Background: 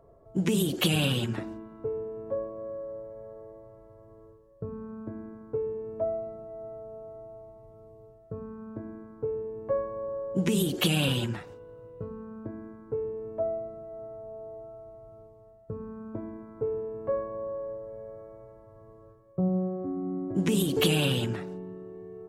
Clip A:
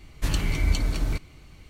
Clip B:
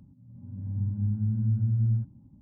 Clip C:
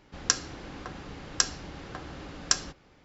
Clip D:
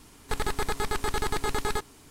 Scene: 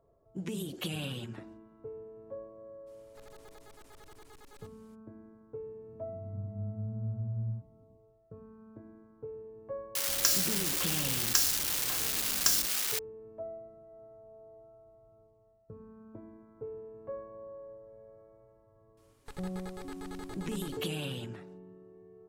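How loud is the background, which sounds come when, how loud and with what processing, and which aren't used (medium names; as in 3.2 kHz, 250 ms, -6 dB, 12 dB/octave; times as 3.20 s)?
background -11.5 dB
2.86 s: add D -16.5 dB, fades 0.02 s + overload inside the chain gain 35.5 dB
5.57 s: add B -10 dB
9.95 s: add C -6 dB + zero-crossing glitches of -13 dBFS
18.97 s: add D -18 dB
not used: A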